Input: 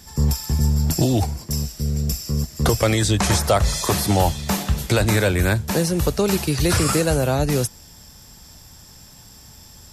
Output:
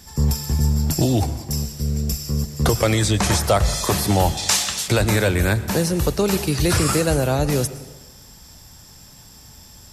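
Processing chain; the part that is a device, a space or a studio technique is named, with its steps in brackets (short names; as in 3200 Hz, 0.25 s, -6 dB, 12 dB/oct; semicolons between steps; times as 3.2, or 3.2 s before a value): 4.37–4.88 weighting filter ITU-R 468; saturated reverb return (on a send at -12.5 dB: reverb RT60 1.2 s, pre-delay 95 ms + soft clip -13.5 dBFS, distortion -17 dB)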